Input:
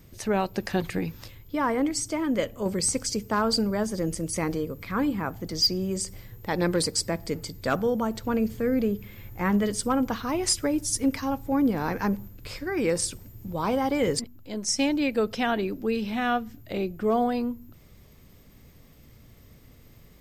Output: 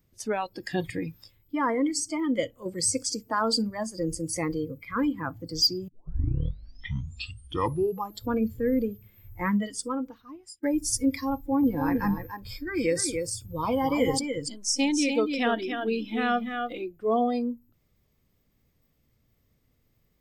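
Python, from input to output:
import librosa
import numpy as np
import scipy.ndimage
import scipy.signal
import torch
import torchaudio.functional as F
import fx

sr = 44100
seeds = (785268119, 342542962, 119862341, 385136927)

y = fx.echo_single(x, sr, ms=290, db=-5.0, at=(11.34, 16.8))
y = fx.edit(y, sr, fx.tape_start(start_s=5.88, length_s=2.39),
    fx.fade_out_span(start_s=9.39, length_s=1.24), tone=tone)
y = fx.noise_reduce_blind(y, sr, reduce_db=17)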